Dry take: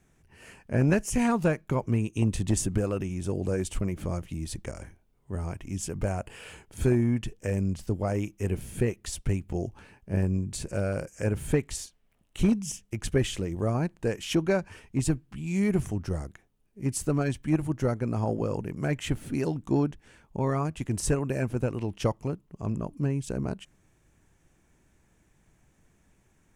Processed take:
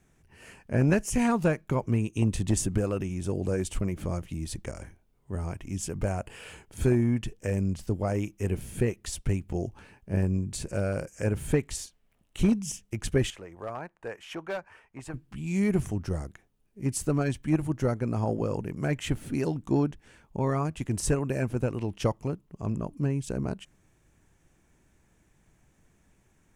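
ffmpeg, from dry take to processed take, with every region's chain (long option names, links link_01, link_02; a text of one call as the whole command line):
ffmpeg -i in.wav -filter_complex "[0:a]asettb=1/sr,asplit=3[link_01][link_02][link_03];[link_01]atrim=end=13.304[link_04];[link_02]atrim=start=13.3:end=15.14,asetpts=PTS-STARTPTS,afade=type=in:duration=0.004:curve=qsin,afade=type=out:start_time=1.836:duration=0.004:curve=qsin,acrossover=split=580 2100:gain=0.126 1 0.178[link_05][link_06][link_07];[link_05][link_06][link_07]amix=inputs=3:normalize=0,asoftclip=type=hard:threshold=-27.5dB[link_08];[link_03]atrim=start=15.136[link_09];[link_04][link_08]acrossfade=duration=0.004:curve1=hsin:curve2=qsin[link_10];[link_10][link_09]acrossfade=duration=0.004:curve1=qsin:curve2=hsin" out.wav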